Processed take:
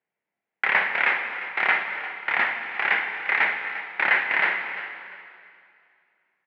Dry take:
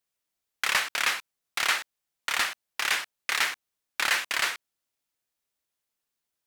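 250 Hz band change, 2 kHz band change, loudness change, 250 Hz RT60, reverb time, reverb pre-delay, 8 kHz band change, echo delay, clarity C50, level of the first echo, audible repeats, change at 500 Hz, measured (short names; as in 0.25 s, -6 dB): +7.5 dB, +7.0 dB, +4.0 dB, 2.5 s, 2.3 s, 7 ms, under -30 dB, 0.35 s, 5.5 dB, -15.0 dB, 2, +7.5 dB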